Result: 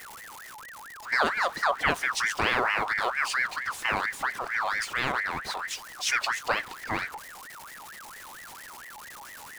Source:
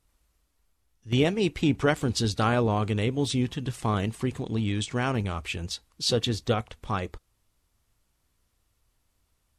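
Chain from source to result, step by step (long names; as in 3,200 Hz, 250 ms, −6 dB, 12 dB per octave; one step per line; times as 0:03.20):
converter with a step at zero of −35.5 dBFS
ring modulator whose carrier an LFO sweeps 1,400 Hz, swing 40%, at 4.4 Hz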